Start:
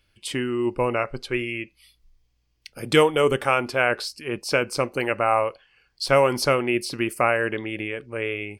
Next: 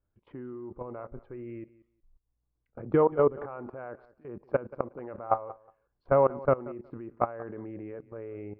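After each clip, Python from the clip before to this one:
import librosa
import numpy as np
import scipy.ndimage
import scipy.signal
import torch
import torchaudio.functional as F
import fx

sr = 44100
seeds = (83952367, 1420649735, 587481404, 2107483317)

y = scipy.signal.sosfilt(scipy.signal.butter(4, 1200.0, 'lowpass', fs=sr, output='sos'), x)
y = fx.level_steps(y, sr, step_db=20)
y = fx.echo_feedback(y, sr, ms=182, feedback_pct=16, wet_db=-19.5)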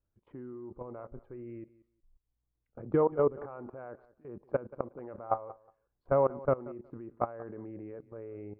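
y = fx.high_shelf(x, sr, hz=2200.0, db=-10.0)
y = y * 10.0 ** (-3.0 / 20.0)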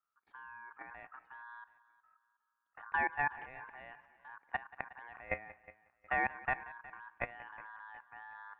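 y = x * np.sin(2.0 * np.pi * 1300.0 * np.arange(len(x)) / sr)
y = fx.echo_feedback(y, sr, ms=364, feedback_pct=38, wet_db=-20)
y = y * 10.0 ** (-4.5 / 20.0)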